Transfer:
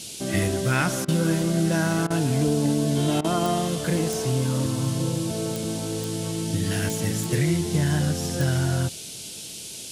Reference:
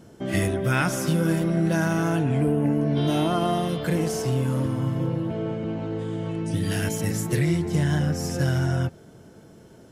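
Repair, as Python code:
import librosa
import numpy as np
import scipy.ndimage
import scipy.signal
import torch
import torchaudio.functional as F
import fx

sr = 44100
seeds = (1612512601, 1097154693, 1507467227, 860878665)

y = fx.fix_declick_ar(x, sr, threshold=10.0)
y = fx.fix_interpolate(y, sr, at_s=(1.05, 2.07, 3.21), length_ms=32.0)
y = fx.noise_reduce(y, sr, print_start_s=9.29, print_end_s=9.79, reduce_db=10.0)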